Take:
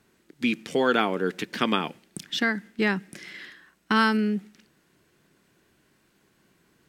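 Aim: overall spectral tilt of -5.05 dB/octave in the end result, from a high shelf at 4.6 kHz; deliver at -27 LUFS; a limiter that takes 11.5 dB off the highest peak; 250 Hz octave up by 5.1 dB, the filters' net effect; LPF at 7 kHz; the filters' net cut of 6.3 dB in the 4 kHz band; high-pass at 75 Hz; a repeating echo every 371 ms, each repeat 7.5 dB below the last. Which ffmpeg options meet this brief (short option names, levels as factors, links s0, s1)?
-af "highpass=75,lowpass=7000,equalizer=f=250:t=o:g=6,equalizer=f=4000:t=o:g=-5.5,highshelf=f=4600:g=-6,alimiter=limit=0.126:level=0:latency=1,aecho=1:1:371|742|1113|1484|1855:0.422|0.177|0.0744|0.0312|0.0131,volume=1.26"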